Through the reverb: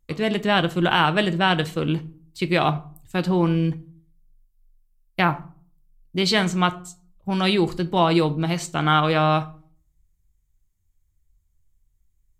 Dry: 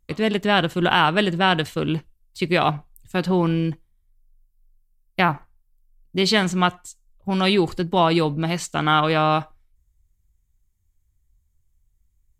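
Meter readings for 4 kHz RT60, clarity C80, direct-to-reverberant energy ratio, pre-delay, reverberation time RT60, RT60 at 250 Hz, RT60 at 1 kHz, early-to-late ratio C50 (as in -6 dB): 0.30 s, 23.5 dB, 11.0 dB, 6 ms, 0.45 s, 0.65 s, 0.45 s, 19.0 dB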